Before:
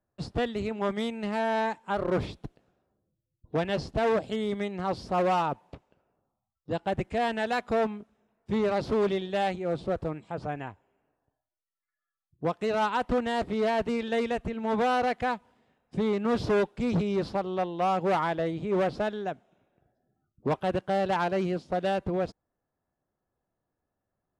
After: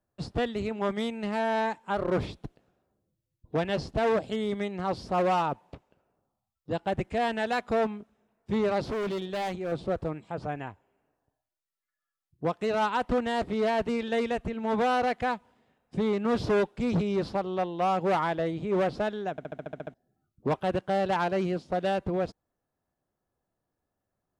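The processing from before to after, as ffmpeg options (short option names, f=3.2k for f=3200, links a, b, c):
-filter_complex "[0:a]asettb=1/sr,asplit=3[a][b][c];[a]atrim=end=8.904[d];[b]atrim=start=8.9:end=9.72,asetpts=PTS-STARTPTS,afade=t=in:d=0.004:c=qsin,afade=t=out:st=0.816:d=0.004:c=qsin,volume=28.5dB,asoftclip=hard,volume=-28.5dB[e];[c]atrim=start=9.716[f];[d][e]acrossfade=d=0.004:c1=hsin:c2=qsin[g];[g][f]acrossfade=d=0.004:c1=qsin:c2=hsin,asplit=10[h][i][j][k][l][m][n][o][p][q];[h]atrim=end=19.382[r];[i]atrim=start=19.308:end=19.382[s];[j]atrim=start=19.308:end=19.382[t];[k]atrim=start=19.308:end=19.382[u];[l]atrim=start=19.308:end=19.382[v];[m]atrim=start=19.308:end=19.382[w];[n]atrim=start=19.308:end=19.382[x];[o]atrim=start=19.308:end=19.382[y];[p]atrim=start=19.308:end=19.382[z];[q]atrim=start=19.938[aa];[r][s]acrossfade=d=0.004:c1=hsin:c2=hsin[ab];[ab][t]acrossfade=d=0.004:c1=hsin:c2=hsin[ac];[ac][u]acrossfade=d=0.004:c1=hsin:c2=hsin[ad];[ad][v]acrossfade=d=0.004:c1=hsin:c2=hsin[ae];[ae][w]acrossfade=d=0.004:c1=hsin:c2=hsin[af];[af][x]acrossfade=d=0.004:c1=hsin:c2=hsin[ag];[ag][y]acrossfade=d=0.004:c1=hsin:c2=hsin[ah];[ah][z]acrossfade=d=0.004:c1=hsin:c2=hsin[ai];[ai][aa]acrossfade=d=0.004:c1=hsin:c2=hsin"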